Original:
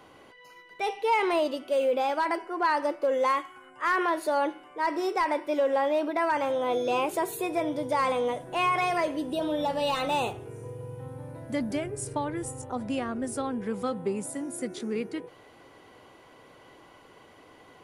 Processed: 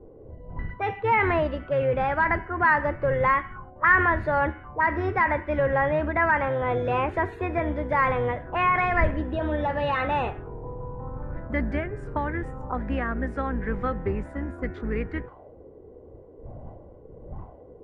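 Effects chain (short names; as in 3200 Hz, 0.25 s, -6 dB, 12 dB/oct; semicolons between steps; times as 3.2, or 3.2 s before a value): octaver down 2 oct, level +3 dB; wind noise 100 Hz -40 dBFS; envelope low-pass 380–1800 Hz up, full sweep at -28 dBFS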